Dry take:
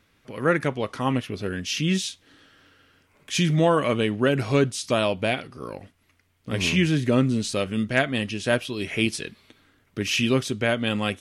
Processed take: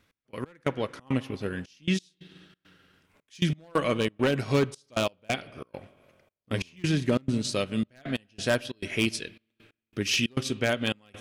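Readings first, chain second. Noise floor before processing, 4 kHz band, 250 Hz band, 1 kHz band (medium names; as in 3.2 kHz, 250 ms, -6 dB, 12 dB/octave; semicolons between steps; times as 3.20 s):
-65 dBFS, -4.0 dB, -5.0 dB, -6.5 dB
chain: dynamic bell 4.9 kHz, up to +5 dB, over -44 dBFS, Q 1.6; wavefolder -12.5 dBFS; spring tank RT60 2 s, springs 45/49 ms, chirp 80 ms, DRR 15 dB; trance gate "x..x..xxx.xxxx" 136 bpm -24 dB; transient shaper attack +2 dB, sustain -5 dB; trim -3.5 dB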